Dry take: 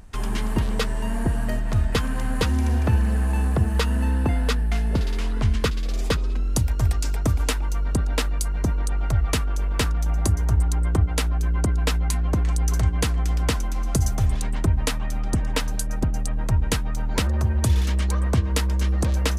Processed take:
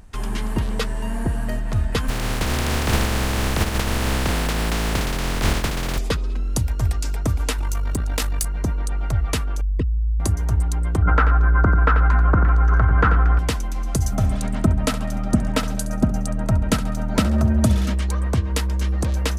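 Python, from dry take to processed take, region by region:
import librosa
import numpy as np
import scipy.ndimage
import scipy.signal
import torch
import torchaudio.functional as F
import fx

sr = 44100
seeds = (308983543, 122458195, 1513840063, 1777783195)

y = fx.spec_flatten(x, sr, power=0.1, at=(2.08, 5.97), fade=0.02)
y = fx.riaa(y, sr, side='playback', at=(2.08, 5.97), fade=0.02)
y = fx.chain(y, sr, fx.high_shelf(hz=5700.0, db=9.5),
    fx.tube_stage(drive_db=12.0, bias=0.7),
    fx.env_flatten(amount_pct=100), at=(7.58, 8.45))
y = fx.chain(y, sr, fx.envelope_sharpen(power=3.0),
    fx.notch(hz=870.0, q=6.9),
    fx.env_flatten(amount_pct=70), at=(9.61, 10.2))
y = fx.chain(y, sr, fx.lowpass_res(hz=1400.0, q=6.6),
    fx.echo_feedback(ms=88, feedback_pct=18, wet_db=-10.5),
    fx.env_flatten(amount_pct=100), at=(11.02, 13.39))
y = fx.chain(y, sr, fx.small_body(hz=(220.0, 630.0, 1300.0), ring_ms=30, db=11),
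    fx.echo_feedback(ms=68, feedback_pct=43, wet_db=-14.0), at=(14.12, 17.94))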